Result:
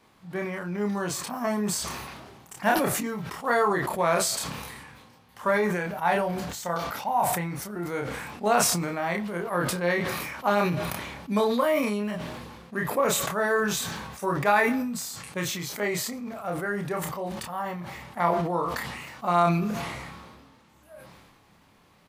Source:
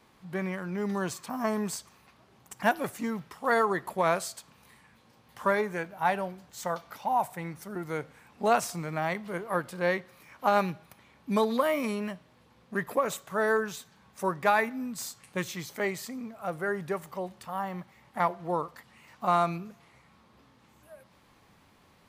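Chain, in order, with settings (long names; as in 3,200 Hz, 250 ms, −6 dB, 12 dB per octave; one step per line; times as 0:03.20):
double-tracking delay 29 ms −4 dB
level that may fall only so fast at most 33 dB per second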